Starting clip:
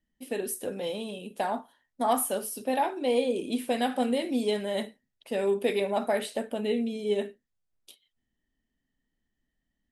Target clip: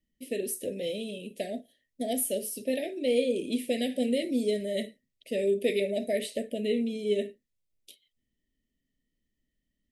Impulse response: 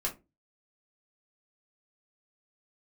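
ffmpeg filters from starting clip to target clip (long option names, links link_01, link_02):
-filter_complex "[0:a]asuperstop=centerf=1100:order=12:qfactor=0.9,asettb=1/sr,asplit=3[link_01][link_02][link_03];[link_01]atrim=end=4.244[link_04];[link_02]atrim=start=4.24:end=4.77,asetpts=PTS-STARTPTS,afade=type=in:duration=0.004:curve=qsin,afade=type=out:start_time=0.526:duration=0.004:curve=qsin,equalizer=frequency=2800:width_type=o:width=0.83:gain=-7[link_05];[link_03]atrim=start=4.766[link_06];[link_04][link_05]acrossfade=duration=0.004:curve1=hsin:curve2=qsin[link_07];[link_07][link_06]acrossfade=duration=0.004:curve1=qsin:curve2=hsin"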